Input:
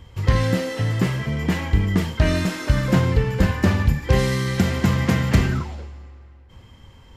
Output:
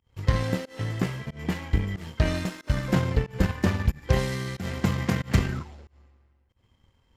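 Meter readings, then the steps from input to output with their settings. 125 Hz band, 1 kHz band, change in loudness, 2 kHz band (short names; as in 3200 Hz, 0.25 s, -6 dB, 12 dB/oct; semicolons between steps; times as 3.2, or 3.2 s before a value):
-7.0 dB, -6.0 dB, -6.5 dB, -7.0 dB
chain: pump 92 bpm, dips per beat 1, -20 dB, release 0.158 s; power-law curve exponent 1.4; gain -3 dB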